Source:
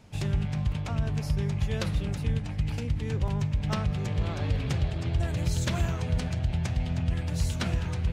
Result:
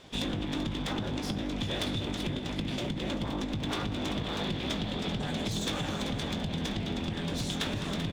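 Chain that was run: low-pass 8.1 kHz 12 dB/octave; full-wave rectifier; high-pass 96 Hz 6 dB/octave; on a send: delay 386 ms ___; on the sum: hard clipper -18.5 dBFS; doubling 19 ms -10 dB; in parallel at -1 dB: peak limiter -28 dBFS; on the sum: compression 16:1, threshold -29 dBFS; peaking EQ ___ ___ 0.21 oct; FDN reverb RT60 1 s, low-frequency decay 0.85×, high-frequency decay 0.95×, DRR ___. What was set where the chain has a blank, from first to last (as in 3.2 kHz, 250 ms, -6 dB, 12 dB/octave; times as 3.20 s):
-12 dB, 3.5 kHz, +13.5 dB, 18.5 dB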